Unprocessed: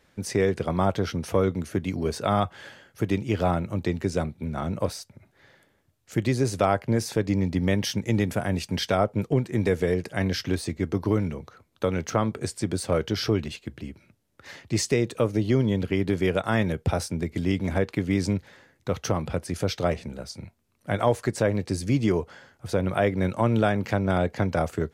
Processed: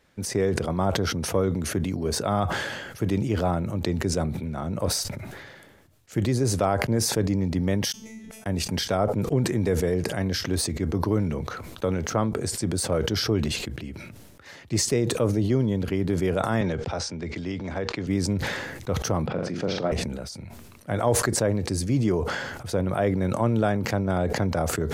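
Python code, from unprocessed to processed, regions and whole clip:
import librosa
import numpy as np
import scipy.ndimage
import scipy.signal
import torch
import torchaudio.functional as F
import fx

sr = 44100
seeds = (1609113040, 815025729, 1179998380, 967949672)

y = fx.chain(x, sr, fx.over_compress(threshold_db=-35.0, ratio=-1.0),
    fx.comb_fb(f0_hz=220.0, decay_s=0.57, harmonics='all', damping=0.0, mix_pct=100),
    fx.gate_flip(shuts_db=-46.0, range_db=-29), at=(7.92, 8.46))
y = fx.chain(y, sr, fx.lowpass(hz=6300.0, slope=24),
    fx.low_shelf(hz=390.0, db=-8.5),
    fx.band_squash(depth_pct=40), at=(16.61, 18.07))
y = fx.chain(y, sr, fx.highpass(hz=140.0, slope=24),
    fx.air_absorb(metres=180.0),
    fx.room_flutter(wall_m=7.3, rt60_s=0.35), at=(19.26, 19.92))
y = fx.dynamic_eq(y, sr, hz=2600.0, q=0.93, threshold_db=-45.0, ratio=4.0, max_db=-6)
y = fx.sustainer(y, sr, db_per_s=35.0)
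y = y * 10.0 ** (-1.0 / 20.0)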